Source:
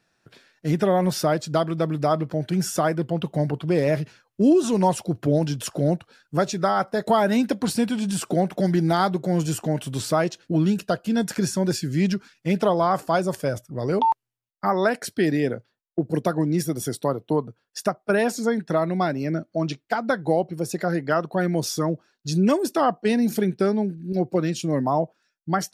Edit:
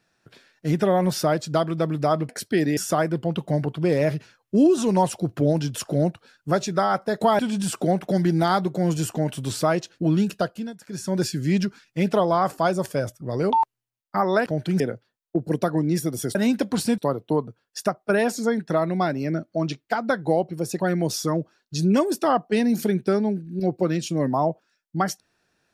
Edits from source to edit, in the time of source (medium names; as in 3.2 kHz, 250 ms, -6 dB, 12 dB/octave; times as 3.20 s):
2.29–2.63 s: swap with 14.95–15.43 s
7.25–7.88 s: move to 16.98 s
10.89–11.69 s: dip -17.5 dB, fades 0.33 s
20.80–21.33 s: delete